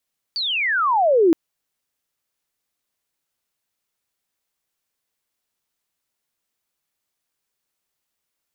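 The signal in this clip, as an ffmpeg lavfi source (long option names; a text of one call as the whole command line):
ffmpeg -f lavfi -i "aevalsrc='pow(10,(-21.5+11*t/0.97)/20)*sin(2*PI*4700*0.97/log(310/4700)*(exp(log(310/4700)*t/0.97)-1))':duration=0.97:sample_rate=44100" out.wav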